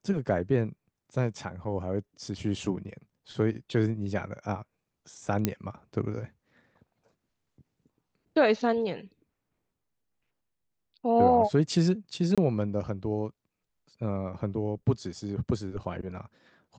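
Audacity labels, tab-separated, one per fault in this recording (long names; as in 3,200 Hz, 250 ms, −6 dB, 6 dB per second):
5.450000	5.450000	click −10 dBFS
12.350000	12.380000	drop-out 26 ms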